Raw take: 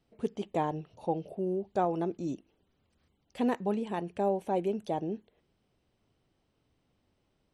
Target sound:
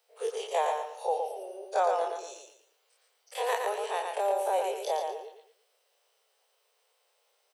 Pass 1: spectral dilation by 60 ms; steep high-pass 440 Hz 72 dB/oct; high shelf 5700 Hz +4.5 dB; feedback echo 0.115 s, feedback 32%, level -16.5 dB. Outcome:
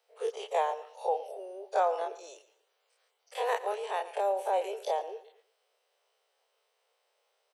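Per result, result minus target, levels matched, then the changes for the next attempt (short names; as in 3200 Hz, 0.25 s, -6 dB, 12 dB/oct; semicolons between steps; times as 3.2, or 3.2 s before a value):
echo-to-direct -12 dB; 8000 Hz band -6.0 dB
change: feedback echo 0.115 s, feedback 32%, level -4.5 dB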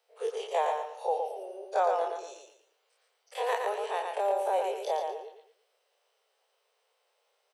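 8000 Hz band -6.0 dB
change: high shelf 5700 Hz +14 dB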